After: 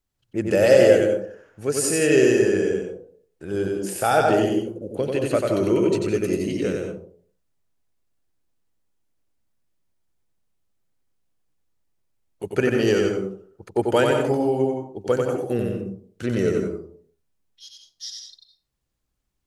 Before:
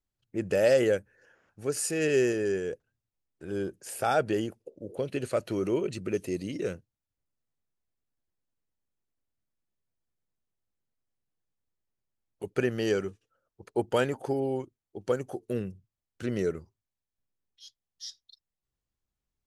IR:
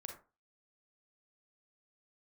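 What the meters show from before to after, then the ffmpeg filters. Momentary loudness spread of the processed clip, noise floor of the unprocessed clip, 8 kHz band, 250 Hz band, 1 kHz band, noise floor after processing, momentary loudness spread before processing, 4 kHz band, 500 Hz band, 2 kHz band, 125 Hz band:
18 LU, below −85 dBFS, +8.5 dB, +9.5 dB, +9.0 dB, −76 dBFS, 17 LU, +8.5 dB, +9.0 dB, +8.0 dB, +8.5 dB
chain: -filter_complex "[0:a]asplit=2[link_01][link_02];[1:a]atrim=start_sample=2205,asetrate=25137,aresample=44100,adelay=92[link_03];[link_02][link_03]afir=irnorm=-1:irlink=0,volume=0dB[link_04];[link_01][link_04]amix=inputs=2:normalize=0,volume=6dB"

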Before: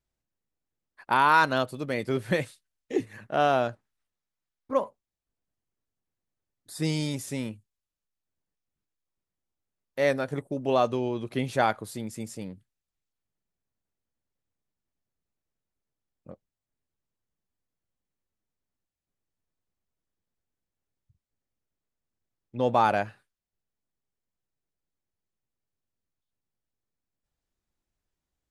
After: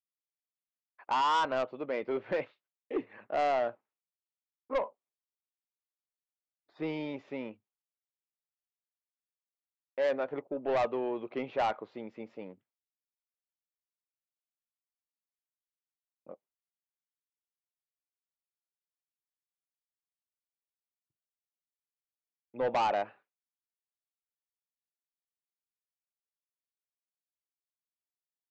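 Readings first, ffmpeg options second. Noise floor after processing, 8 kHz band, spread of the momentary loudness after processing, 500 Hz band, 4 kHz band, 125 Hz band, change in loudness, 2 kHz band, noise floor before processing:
below −85 dBFS, below −10 dB, 16 LU, −4.0 dB, −6.0 dB, −17.5 dB, −6.0 dB, −10.0 dB, below −85 dBFS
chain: -af "lowpass=frequency=2400:width=0.5412,lowpass=frequency=2400:width=1.3066,agate=range=-33dB:threshold=-57dB:ratio=3:detection=peak,highpass=410,equalizer=frequency=1700:width_type=o:width=0.63:gain=-8.5,aresample=16000,asoftclip=type=tanh:threshold=-25.5dB,aresample=44100,volume=1.5dB"

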